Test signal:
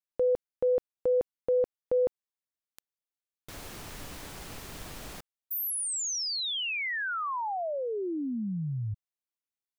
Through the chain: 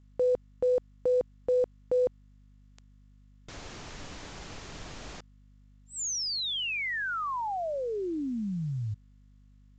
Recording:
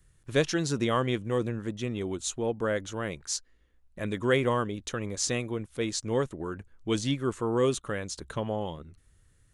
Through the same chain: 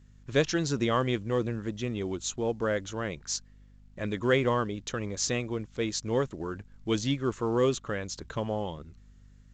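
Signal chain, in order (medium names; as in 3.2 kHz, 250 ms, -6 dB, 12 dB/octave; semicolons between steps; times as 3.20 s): hum 50 Hz, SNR 25 dB; µ-law 128 kbps 16 kHz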